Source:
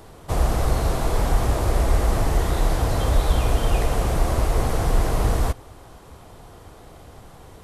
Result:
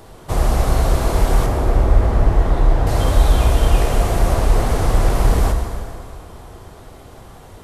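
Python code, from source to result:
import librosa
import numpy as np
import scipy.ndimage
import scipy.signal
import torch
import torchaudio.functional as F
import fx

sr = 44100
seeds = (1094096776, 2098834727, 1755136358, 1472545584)

y = fx.lowpass(x, sr, hz=1400.0, slope=6, at=(1.46, 2.87))
y = fx.rev_plate(y, sr, seeds[0], rt60_s=2.5, hf_ratio=0.8, predelay_ms=0, drr_db=3.0)
y = fx.doppler_dist(y, sr, depth_ms=0.27, at=(4.34, 5.15))
y = y * librosa.db_to_amplitude(2.5)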